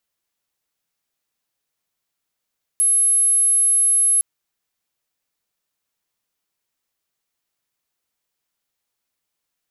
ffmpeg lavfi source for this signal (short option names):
-f lavfi -i "sine=f=10800:d=1.41:r=44100,volume=5.06dB"